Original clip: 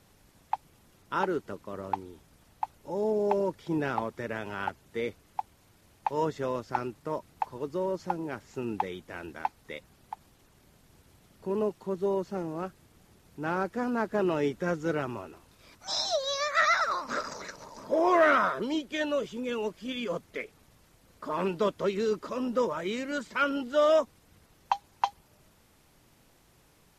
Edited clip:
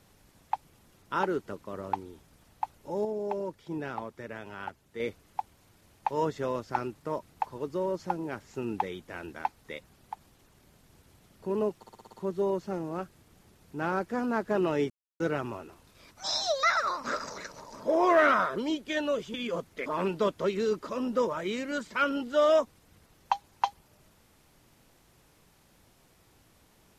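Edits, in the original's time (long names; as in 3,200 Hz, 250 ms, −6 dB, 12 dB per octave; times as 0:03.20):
0:03.05–0:05.00: clip gain −6 dB
0:11.77: stutter 0.06 s, 7 plays
0:14.54–0:14.84: silence
0:16.27–0:16.67: remove
0:19.38–0:19.91: remove
0:20.43–0:21.26: remove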